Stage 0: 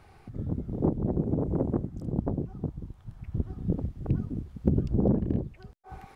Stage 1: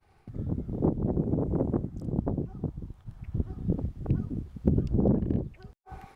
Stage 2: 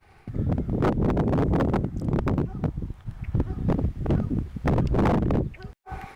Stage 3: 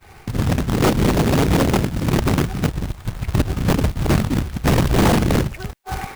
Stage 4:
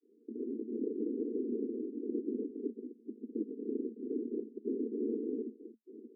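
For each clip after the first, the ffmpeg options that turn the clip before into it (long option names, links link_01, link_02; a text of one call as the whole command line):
ffmpeg -i in.wav -af "agate=range=-33dB:threshold=-47dB:ratio=3:detection=peak" out.wav
ffmpeg -i in.wav -af "equalizer=frequency=2000:width_type=o:width=1.2:gain=5.5,aeval=exprs='0.0708*(abs(mod(val(0)/0.0708+3,4)-2)-1)':channel_layout=same,volume=7.5dB" out.wav
ffmpeg -i in.wav -filter_complex "[0:a]asplit=2[link_01][link_02];[link_02]alimiter=level_in=2.5dB:limit=-24dB:level=0:latency=1:release=104,volume=-2.5dB,volume=2.5dB[link_03];[link_01][link_03]amix=inputs=2:normalize=0,acrusher=bits=2:mode=log:mix=0:aa=0.000001,volume=2.5dB" out.wav
ffmpeg -i in.wav -af "aeval=exprs='abs(val(0))':channel_layout=same,asuperpass=centerf=320:order=20:qfactor=1.3,volume=-9dB" out.wav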